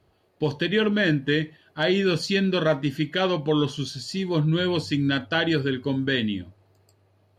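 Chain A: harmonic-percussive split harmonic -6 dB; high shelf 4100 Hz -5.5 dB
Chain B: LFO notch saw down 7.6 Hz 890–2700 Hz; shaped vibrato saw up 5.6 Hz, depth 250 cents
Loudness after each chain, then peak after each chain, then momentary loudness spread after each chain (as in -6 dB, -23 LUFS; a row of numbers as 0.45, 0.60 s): -28.5, -25.0 LUFS; -13.5, -11.0 dBFS; 6, 7 LU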